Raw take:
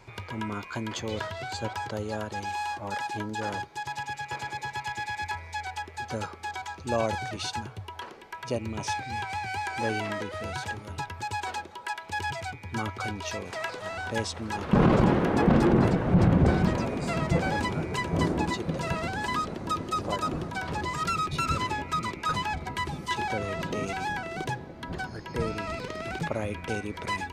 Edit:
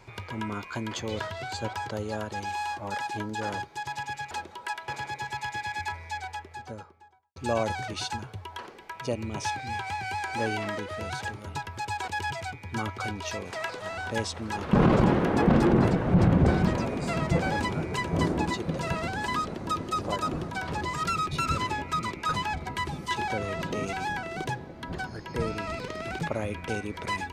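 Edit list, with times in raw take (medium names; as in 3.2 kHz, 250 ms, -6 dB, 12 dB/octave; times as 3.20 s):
5.46–6.79 s: studio fade out
11.51–12.08 s: move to 4.31 s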